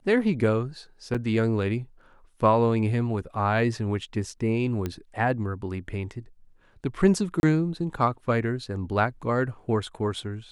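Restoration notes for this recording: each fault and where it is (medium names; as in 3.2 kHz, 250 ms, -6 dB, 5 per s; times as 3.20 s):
1.14–1.15 s: dropout 6.4 ms
4.86 s: pop -16 dBFS
7.40–7.43 s: dropout 31 ms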